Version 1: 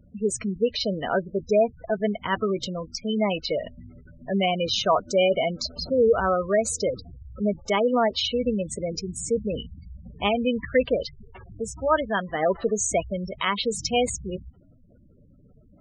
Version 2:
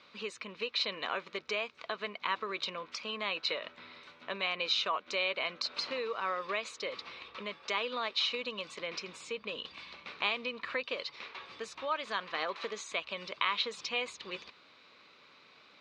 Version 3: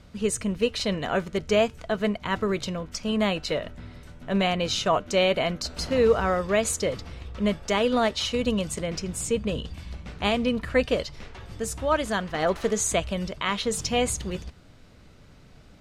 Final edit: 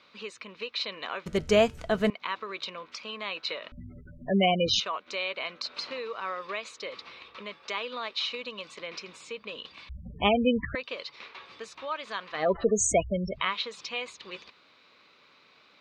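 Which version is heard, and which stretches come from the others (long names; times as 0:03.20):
2
0:01.26–0:02.10: punch in from 3
0:03.72–0:04.80: punch in from 1
0:09.89–0:10.75: punch in from 1
0:12.43–0:13.44: punch in from 1, crossfade 0.24 s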